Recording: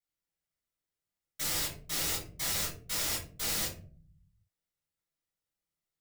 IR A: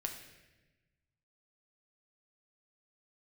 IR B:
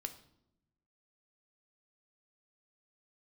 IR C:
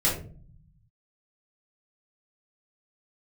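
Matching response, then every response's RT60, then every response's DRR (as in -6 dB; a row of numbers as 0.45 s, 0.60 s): C; 1.1 s, 0.80 s, 0.45 s; 2.5 dB, 6.5 dB, -7.0 dB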